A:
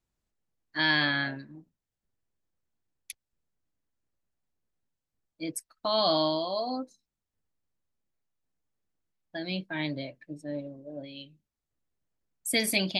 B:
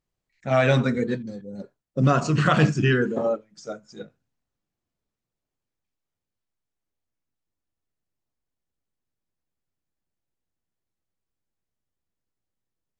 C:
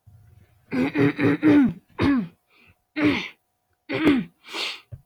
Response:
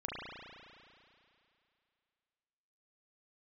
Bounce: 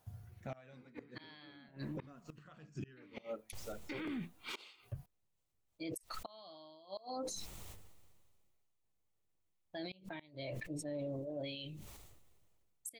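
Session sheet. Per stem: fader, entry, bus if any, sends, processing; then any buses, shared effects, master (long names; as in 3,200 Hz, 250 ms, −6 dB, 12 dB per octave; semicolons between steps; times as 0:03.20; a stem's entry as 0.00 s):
−0.5 dB, 0.40 s, no send, thirty-one-band graphic EQ 100 Hz +4 dB, 160 Hz −4 dB, 250 Hz −10 dB, 1,600 Hz −8 dB, 5,000 Hz −4 dB; level that may fall only so fast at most 29 dB per second
−10.5 dB, 0.00 s, no send, no processing
+2.0 dB, 0.00 s, no send, downward compressor 6 to 1, threshold −23 dBFS, peak gain reduction 10.5 dB; automatic ducking −9 dB, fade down 0.35 s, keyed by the second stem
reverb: not used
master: gate with flip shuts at −22 dBFS, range −29 dB; brickwall limiter −34 dBFS, peak gain reduction 12 dB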